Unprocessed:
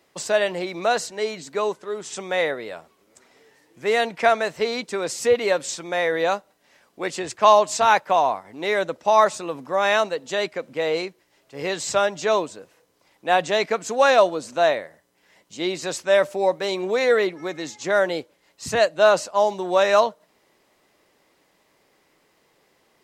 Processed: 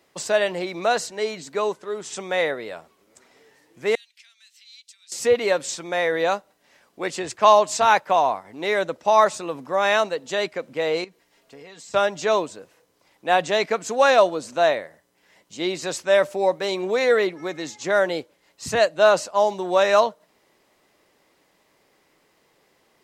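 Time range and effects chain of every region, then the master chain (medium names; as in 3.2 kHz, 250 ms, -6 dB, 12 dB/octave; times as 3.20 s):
3.95–5.12 s: compression 2.5:1, threshold -37 dBFS + ladder high-pass 2.7 kHz, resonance 25%
11.04–11.94 s: comb 4.3 ms, depth 45% + compression 12:1, threshold -40 dBFS
whole clip: none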